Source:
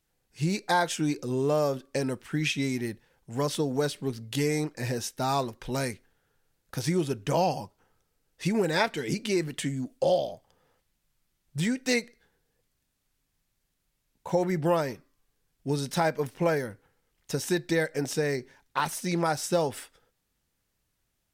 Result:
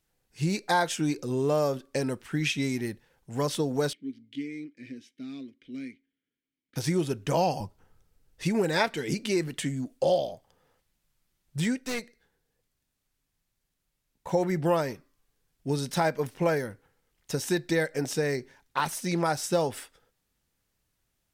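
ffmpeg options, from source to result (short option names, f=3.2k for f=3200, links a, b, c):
-filter_complex "[0:a]asettb=1/sr,asplit=3[a][b][c];[a]atrim=end=3.934[d];[b]atrim=start=3.93:end=6.76,asetpts=PTS-STARTPTS,afade=t=in:d=0.004:c=qsin,afade=t=out:st=2.826:d=0.004:c=qsin,asplit=3[e][f][g];[e]bandpass=f=270:t=q:w=8,volume=0dB[h];[f]bandpass=f=2.29k:t=q:w=8,volume=-6dB[i];[g]bandpass=f=3.01k:t=q:w=8,volume=-9dB[j];[h][i][j]amix=inputs=3:normalize=0[k];[c]atrim=start=6.756[l];[d][k]acrossfade=d=0.004:c1=hsin:c2=qsin[m];[m][l]acrossfade=d=0.004:c1=qsin:c2=hsin,asettb=1/sr,asplit=3[n][o][p];[n]atrim=end=7.604[q];[o]atrim=start=7.6:end=8.44,asetpts=PTS-STARTPTS,afade=t=in:d=0.004:c=qsin,afade=t=out:st=0.836:d=0.004:c=qsin,lowshelf=f=160:g=12[r];[p]atrim=start=8.436[s];[q][r]acrossfade=d=0.004:c1=hsin:c2=qsin[t];[t][s]acrossfade=d=0.004:c1=qsin:c2=hsin,asettb=1/sr,asplit=3[u][v][w];[u]atrim=end=11.774[x];[v]atrim=start=11.77:end=14.27,asetpts=PTS-STARTPTS,afade=t=in:d=0.004:c=qsin,afade=t=out:st=2.496:d=0.004:c=qsin,aeval=exprs='(tanh(25.1*val(0)+0.6)-tanh(0.6))/25.1':c=same[y];[w]atrim=start=14.266[z];[x][y]acrossfade=d=0.004:c1=hsin:c2=qsin[aa];[aa][z]acrossfade=d=0.004:c1=qsin:c2=hsin"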